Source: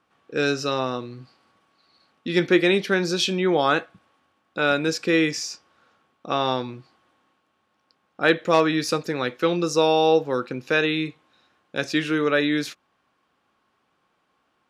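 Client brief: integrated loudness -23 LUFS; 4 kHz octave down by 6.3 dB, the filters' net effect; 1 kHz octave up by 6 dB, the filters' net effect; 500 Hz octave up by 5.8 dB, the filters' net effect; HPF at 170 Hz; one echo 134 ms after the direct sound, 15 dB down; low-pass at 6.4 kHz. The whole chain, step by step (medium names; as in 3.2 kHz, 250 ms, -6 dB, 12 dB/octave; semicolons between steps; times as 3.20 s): high-pass 170 Hz; low-pass 6.4 kHz; peaking EQ 500 Hz +5.5 dB; peaking EQ 1 kHz +6.5 dB; peaking EQ 4 kHz -7.5 dB; delay 134 ms -15 dB; trim -4.5 dB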